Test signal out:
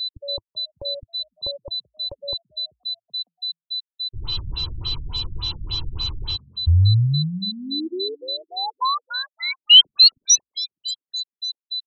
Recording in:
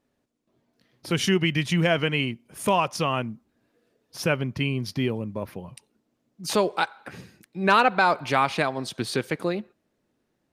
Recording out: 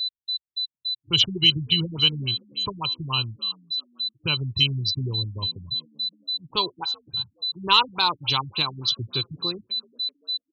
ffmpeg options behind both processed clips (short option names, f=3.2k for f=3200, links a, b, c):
-filter_complex "[0:a]afftdn=nr=33:nf=-36,firequalizer=gain_entry='entry(100,0);entry(220,-22);entry(330,-12);entry(640,-27);entry(970,-5);entry(1800,-25);entry(3000,9);entry(10000,-10)':delay=0.05:min_phase=1,asplit=2[a][b];[b]asoftclip=type=hard:threshold=-18.5dB,volume=-5.5dB[c];[a][c]amix=inputs=2:normalize=0,aexciter=amount=2.4:drive=2.9:freq=7k,aeval=exprs='val(0)+0.0447*sin(2*PI*4000*n/s)':c=same,asplit=2[d][e];[e]asplit=3[f][g][h];[f]adelay=384,afreqshift=55,volume=-23dB[i];[g]adelay=768,afreqshift=110,volume=-28.8dB[j];[h]adelay=1152,afreqshift=165,volume=-34.7dB[k];[i][j][k]amix=inputs=3:normalize=0[l];[d][l]amix=inputs=2:normalize=0,afftfilt=real='re*lt(b*sr/1024,270*pow(7700/270,0.5+0.5*sin(2*PI*3.5*pts/sr)))':imag='im*lt(b*sr/1024,270*pow(7700/270,0.5+0.5*sin(2*PI*3.5*pts/sr)))':win_size=1024:overlap=0.75,volume=4dB"